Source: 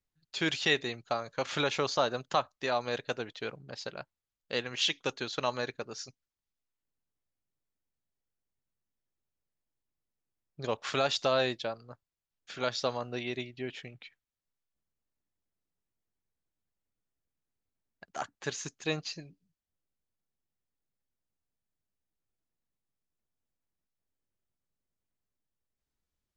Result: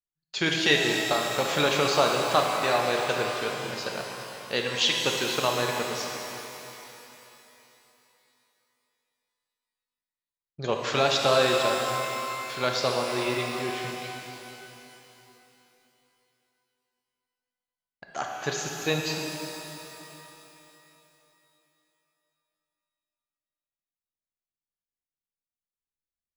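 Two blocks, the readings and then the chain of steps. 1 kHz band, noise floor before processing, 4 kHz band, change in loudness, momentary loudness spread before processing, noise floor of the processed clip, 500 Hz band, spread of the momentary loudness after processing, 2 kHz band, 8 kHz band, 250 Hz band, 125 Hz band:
+8.5 dB, under -85 dBFS, +7.5 dB, +7.0 dB, 15 LU, under -85 dBFS, +7.5 dB, 18 LU, +8.0 dB, +10.0 dB, +7.0 dB, +7.0 dB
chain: gate with hold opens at -54 dBFS; shimmer reverb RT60 3.2 s, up +12 st, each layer -8 dB, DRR 0.5 dB; gain +4.5 dB

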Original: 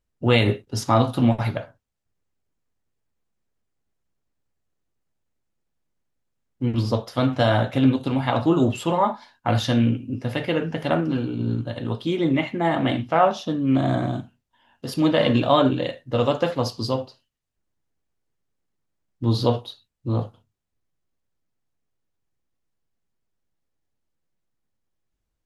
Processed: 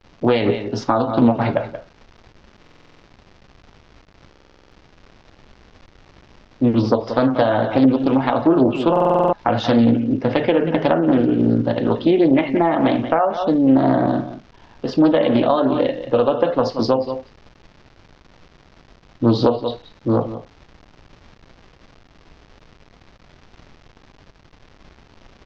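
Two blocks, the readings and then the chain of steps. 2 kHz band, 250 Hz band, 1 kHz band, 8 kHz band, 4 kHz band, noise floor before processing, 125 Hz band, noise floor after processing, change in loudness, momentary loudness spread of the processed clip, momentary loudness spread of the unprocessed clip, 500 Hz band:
+1.0 dB, +6.0 dB, +4.0 dB, n/a, -1.5 dB, -78 dBFS, -1.5 dB, -52 dBFS, +4.5 dB, 7 LU, 9 LU, +6.5 dB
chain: HPF 360 Hz 12 dB/oct; echo 0.18 s -13.5 dB; spectral gate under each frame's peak -30 dB strong; vocal rider within 4 dB 2 s; crackle 430/s -40 dBFS; steep low-pass 6000 Hz 36 dB/oct; compressor 6:1, threshold -24 dBFS, peak gain reduction 11 dB; tilt -3.5 dB/oct; stuck buffer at 2.61/4.3/8.91, samples 2048, times 8; Doppler distortion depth 0.32 ms; gain +8.5 dB

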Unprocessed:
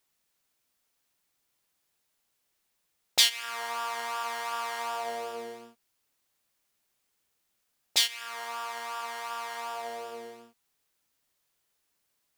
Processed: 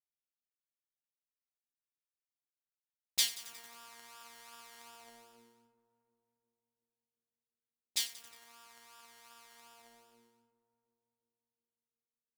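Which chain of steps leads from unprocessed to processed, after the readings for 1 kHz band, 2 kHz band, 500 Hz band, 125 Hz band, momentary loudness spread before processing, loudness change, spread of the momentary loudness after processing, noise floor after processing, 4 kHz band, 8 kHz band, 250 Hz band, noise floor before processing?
-24.0 dB, -15.0 dB, -24.5 dB, n/a, 17 LU, -4.5 dB, 22 LU, under -85 dBFS, -10.5 dB, -6.0 dB, -14.5 dB, -77 dBFS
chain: EQ curve 280 Hz 0 dB, 470 Hz -15 dB, 11000 Hz -2 dB; on a send: darkening echo 0.354 s, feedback 70%, low-pass 980 Hz, level -9.5 dB; on the sum: power-law curve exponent 1.4; lo-fi delay 90 ms, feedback 80%, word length 6-bit, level -14.5 dB

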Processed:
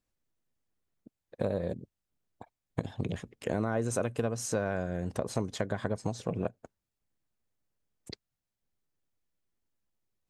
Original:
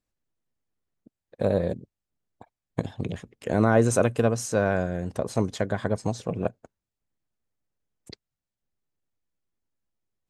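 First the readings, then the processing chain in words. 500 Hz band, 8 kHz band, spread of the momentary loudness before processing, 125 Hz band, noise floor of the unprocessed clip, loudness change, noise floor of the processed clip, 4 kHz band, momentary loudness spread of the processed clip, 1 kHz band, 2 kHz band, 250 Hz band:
-8.0 dB, -5.0 dB, 13 LU, -7.0 dB, under -85 dBFS, -7.5 dB, under -85 dBFS, -4.0 dB, 9 LU, -8.5 dB, -8.0 dB, -7.5 dB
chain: compressor 4:1, threshold -28 dBFS, peak gain reduction 12 dB

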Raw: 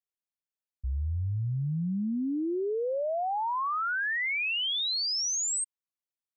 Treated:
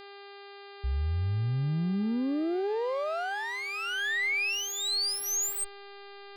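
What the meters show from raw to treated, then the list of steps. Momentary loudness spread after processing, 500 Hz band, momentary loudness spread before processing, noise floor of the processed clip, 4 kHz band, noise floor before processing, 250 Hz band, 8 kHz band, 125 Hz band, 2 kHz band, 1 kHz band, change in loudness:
20 LU, -0.5 dB, 6 LU, -48 dBFS, -2.0 dB, under -85 dBFS, +1.0 dB, -0.5 dB, +1.5 dB, +0.5 dB, -5.5 dB, -0.5 dB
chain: minimum comb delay 0.45 ms; backlash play -51 dBFS; buzz 400 Hz, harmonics 12, -49 dBFS -4 dB/oct; gain +1.5 dB

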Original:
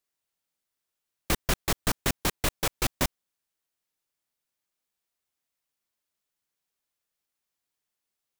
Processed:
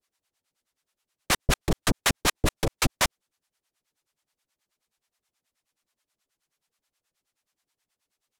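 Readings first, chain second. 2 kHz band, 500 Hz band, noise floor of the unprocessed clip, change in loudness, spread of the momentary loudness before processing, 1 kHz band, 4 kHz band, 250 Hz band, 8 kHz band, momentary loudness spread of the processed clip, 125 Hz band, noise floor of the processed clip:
+4.5 dB, +2.5 dB, under -85 dBFS, +3.0 dB, 3 LU, +3.5 dB, +4.0 dB, +3.0 dB, +3.0 dB, 3 LU, +3.5 dB, under -85 dBFS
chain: Bessel low-pass 10000 Hz, order 2; in parallel at +2 dB: limiter -22 dBFS, peak gain reduction 9.5 dB; on the sum: harmonic tremolo 9.4 Hz, depth 100%, crossover 590 Hz; gain +4.5 dB

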